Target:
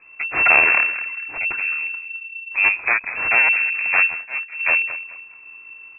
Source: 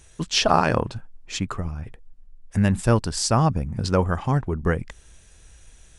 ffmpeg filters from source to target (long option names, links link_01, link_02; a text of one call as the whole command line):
ffmpeg -i in.wav -filter_complex "[0:a]bandreject=frequency=2000:width=14,aecho=1:1:3:0.47,aecho=1:1:213|426|639:0.2|0.0579|0.0168,aeval=exprs='abs(val(0))':channel_layout=same,asettb=1/sr,asplit=3[link_01][link_02][link_03];[link_01]atrim=end=2.654[link_04];[link_02]atrim=start=2.65:end=3.15,asetpts=PTS-STARTPTS,afade=type=in:duration=0.004:curve=qsin,afade=type=out:start_time=0.496:duration=0.004:curve=qsin,highpass=110[link_05];[link_03]atrim=start=3.146[link_06];[link_04][link_05]acrossfade=duration=0.004:curve1=hsin:curve2=qsin[link_07];[link_07][link_06]acrossfade=duration=0.004:curve1=qsin:curve2=hsin,lowpass=frequency=2300:width_type=q:width=0.5098,lowpass=frequency=2300:width_type=q:width=0.6013,lowpass=frequency=2300:width_type=q:width=0.9,lowpass=frequency=2300:width_type=q:width=2.563,afreqshift=-2700,asplit=3[link_08][link_09][link_10];[link_08]afade=type=out:start_time=4.05:duration=0.02[link_11];[link_09]agate=range=-33dB:threshold=-15dB:ratio=3:detection=peak,afade=type=in:start_time=4.05:duration=0.02,afade=type=out:start_time=4.59:duration=0.02[link_12];[link_10]afade=type=in:start_time=4.59:duration=0.02[link_13];[link_11][link_12][link_13]amix=inputs=3:normalize=0,volume=4.5dB" out.wav